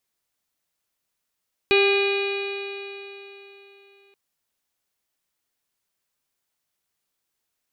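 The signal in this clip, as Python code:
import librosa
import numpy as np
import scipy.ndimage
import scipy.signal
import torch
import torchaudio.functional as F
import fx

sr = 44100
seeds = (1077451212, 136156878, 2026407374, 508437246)

y = fx.additive_stiff(sr, length_s=2.43, hz=396.0, level_db=-16, upper_db=(-13.0, -16.0, -16, -18, -2.5, -13.0, -19.5, -11.5, -18.0), decay_s=3.51, stiffness=0.002)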